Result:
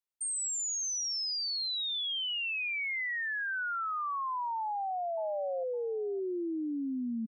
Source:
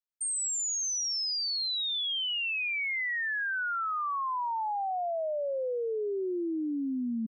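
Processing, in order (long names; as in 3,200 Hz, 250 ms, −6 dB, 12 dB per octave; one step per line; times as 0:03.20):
0:03.06–0:03.48: high-pass filter 870 Hz 12 dB per octave
0:04.61–0:05.07: delay throw 560 ms, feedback 15%, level −9.5 dB
level −2.5 dB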